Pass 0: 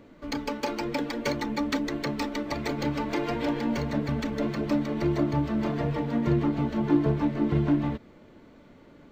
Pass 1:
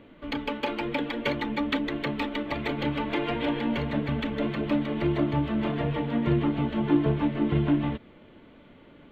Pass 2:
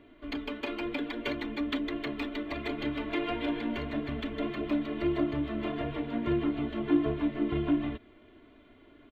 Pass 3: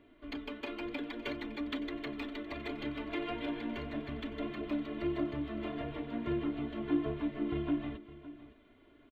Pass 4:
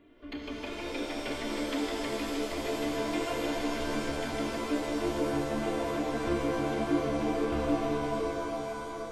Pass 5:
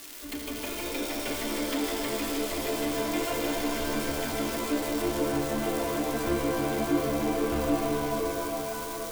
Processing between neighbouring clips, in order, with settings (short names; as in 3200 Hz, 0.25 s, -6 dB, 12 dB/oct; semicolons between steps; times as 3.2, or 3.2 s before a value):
resonant high shelf 4200 Hz -9.5 dB, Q 3
comb 2.9 ms, depth 75%; gain -6.5 dB
echo 0.561 s -16 dB; gain -5.5 dB
shimmer reverb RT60 3.8 s, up +7 st, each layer -2 dB, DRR -1 dB
switching spikes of -30 dBFS; gain +2 dB